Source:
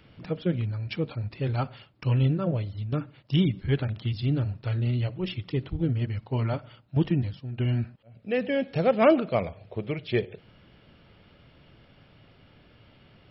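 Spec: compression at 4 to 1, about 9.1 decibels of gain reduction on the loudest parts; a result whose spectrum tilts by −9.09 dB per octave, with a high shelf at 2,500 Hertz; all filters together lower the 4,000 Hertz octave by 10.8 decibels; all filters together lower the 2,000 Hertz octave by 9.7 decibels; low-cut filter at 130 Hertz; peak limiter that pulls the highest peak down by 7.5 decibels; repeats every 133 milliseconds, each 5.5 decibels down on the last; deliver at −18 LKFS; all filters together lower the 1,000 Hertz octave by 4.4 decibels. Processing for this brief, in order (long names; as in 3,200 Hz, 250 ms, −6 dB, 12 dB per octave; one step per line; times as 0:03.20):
high-pass filter 130 Hz
parametric band 1,000 Hz −3.5 dB
parametric band 2,000 Hz −6 dB
high-shelf EQ 2,500 Hz −8 dB
parametric band 4,000 Hz −5 dB
downward compressor 4 to 1, threshold −27 dBFS
brickwall limiter −25.5 dBFS
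repeating echo 133 ms, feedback 53%, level −5.5 dB
level +17 dB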